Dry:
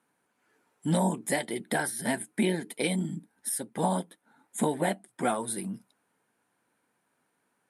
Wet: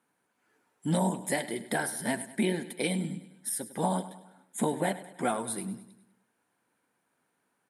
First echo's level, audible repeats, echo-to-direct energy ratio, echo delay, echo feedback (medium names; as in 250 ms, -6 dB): -15.0 dB, 4, -13.5 dB, 101 ms, 50%